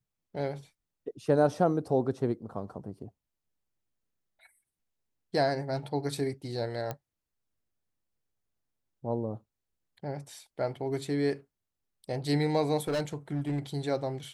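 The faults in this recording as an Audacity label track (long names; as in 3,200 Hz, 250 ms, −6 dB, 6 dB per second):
6.910000	6.910000	click −20 dBFS
12.870000	13.590000	clipping −26.5 dBFS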